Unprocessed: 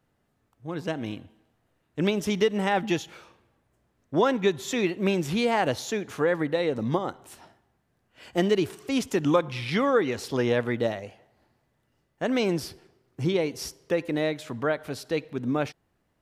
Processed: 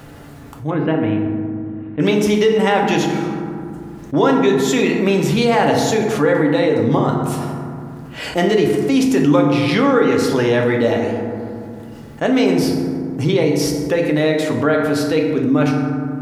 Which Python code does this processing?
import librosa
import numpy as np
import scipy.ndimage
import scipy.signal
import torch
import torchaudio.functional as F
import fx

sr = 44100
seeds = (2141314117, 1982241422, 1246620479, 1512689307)

y = fx.lowpass(x, sr, hz=2600.0, slope=24, at=(0.7, 2.0))
y = fx.rev_fdn(y, sr, rt60_s=1.4, lf_ratio=1.3, hf_ratio=0.45, size_ms=21.0, drr_db=1.0)
y = fx.env_flatten(y, sr, amount_pct=50)
y = F.gain(torch.from_numpy(y), 3.0).numpy()